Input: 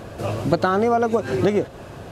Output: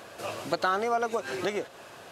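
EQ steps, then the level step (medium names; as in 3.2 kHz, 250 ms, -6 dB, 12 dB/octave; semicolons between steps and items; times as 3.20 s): high-pass 1.3 kHz 6 dB/octave; -1.0 dB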